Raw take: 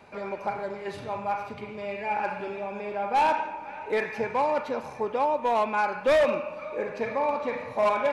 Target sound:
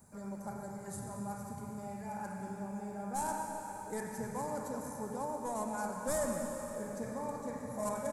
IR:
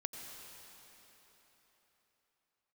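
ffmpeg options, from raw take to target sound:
-filter_complex "[0:a]firequalizer=gain_entry='entry(200,0);entry(360,-14);entry(1700,-14);entry(2500,-29);entry(7500,14)':delay=0.05:min_phase=1[s0];[1:a]atrim=start_sample=2205[s1];[s0][s1]afir=irnorm=-1:irlink=0,volume=1.19"

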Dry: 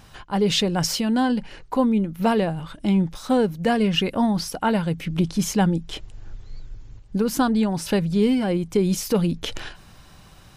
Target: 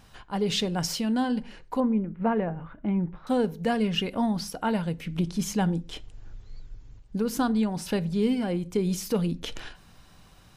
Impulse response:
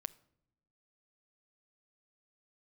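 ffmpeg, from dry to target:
-filter_complex "[0:a]asettb=1/sr,asplit=3[s0][s1][s2];[s0]atrim=end=1.804[s3];[s1]atrim=start=1.8:end=3.27,asetpts=PTS-STARTPTS,afade=t=in:d=0.004:c=qsin,afade=t=out:st=1.466:d=0.004:c=qsin,lowpass=f=2100:w=0.5412,lowpass=f=2100:w=1.3066[s4];[s2]atrim=start=3.266[s5];[s3][s4]acrossfade=d=0.004:c1=hsin:c2=qsin[s6];[s6][s5]acrossfade=d=0.004:c1=qsin:c2=hsin[s7];[1:a]atrim=start_sample=2205,afade=t=out:st=0.33:d=0.01,atrim=end_sample=14994,asetrate=70560,aresample=44100[s8];[s7][s8]afir=irnorm=-1:irlink=0,volume=1.12"

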